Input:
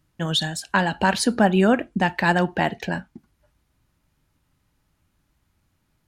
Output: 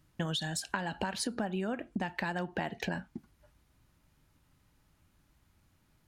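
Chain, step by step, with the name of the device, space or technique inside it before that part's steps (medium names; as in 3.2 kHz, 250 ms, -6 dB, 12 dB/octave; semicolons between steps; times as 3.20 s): serial compression, leveller first (compression 2:1, threshold -23 dBFS, peak gain reduction 6.5 dB; compression 8:1, threshold -31 dBFS, peak gain reduction 13 dB)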